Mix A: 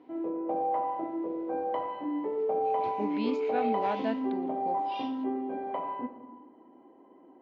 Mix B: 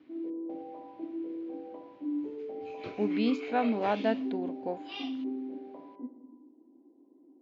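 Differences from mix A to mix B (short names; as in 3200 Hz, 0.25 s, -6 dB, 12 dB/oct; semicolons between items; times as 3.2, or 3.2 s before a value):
speech +4.0 dB; background: add band-pass 290 Hz, Q 3.6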